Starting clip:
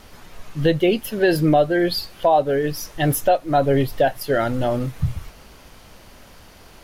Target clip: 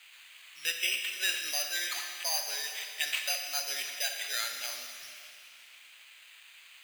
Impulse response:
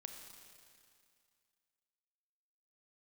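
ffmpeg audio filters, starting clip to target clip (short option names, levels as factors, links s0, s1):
-filter_complex "[0:a]acrusher=samples=8:mix=1:aa=0.000001,highpass=f=2500:t=q:w=2[s0];[1:a]atrim=start_sample=2205[s1];[s0][s1]afir=irnorm=-1:irlink=0"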